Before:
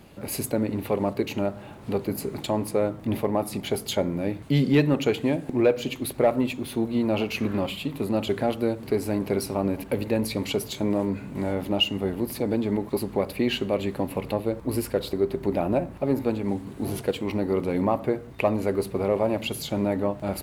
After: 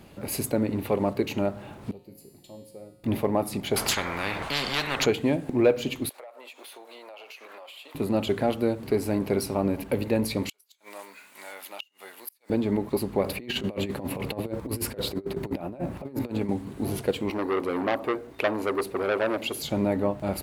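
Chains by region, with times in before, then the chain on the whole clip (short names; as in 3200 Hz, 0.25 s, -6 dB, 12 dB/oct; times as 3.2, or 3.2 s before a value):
1.91–3.04 bell 1400 Hz -14 dB 1.5 oct + notches 60/120/180/240/300/360/420 Hz + resonator 180 Hz, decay 1.3 s, mix 90%
3.76–5.06 LPF 1800 Hz 6 dB/oct + spectral compressor 10:1
6.09–7.95 HPF 570 Hz 24 dB/oct + compressor 12:1, threshold -41 dBFS
10.49–12.5 HPF 1400 Hz + high shelf 6800 Hz +9 dB + flipped gate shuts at -21 dBFS, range -35 dB
13.23–16.49 negative-ratio compressor -30 dBFS, ratio -0.5 + HPF 60 Hz
17.3–19.63 resonant low shelf 230 Hz -8.5 dB, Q 1.5 + core saturation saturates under 1500 Hz
whole clip: dry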